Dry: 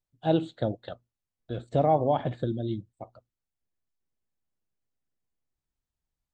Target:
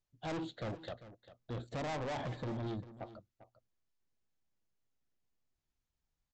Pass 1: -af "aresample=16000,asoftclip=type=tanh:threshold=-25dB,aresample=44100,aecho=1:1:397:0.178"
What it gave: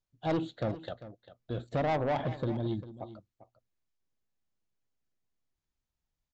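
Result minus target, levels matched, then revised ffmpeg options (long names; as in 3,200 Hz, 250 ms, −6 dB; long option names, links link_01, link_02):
soft clipping: distortion −6 dB
-af "aresample=16000,asoftclip=type=tanh:threshold=-36.5dB,aresample=44100,aecho=1:1:397:0.178"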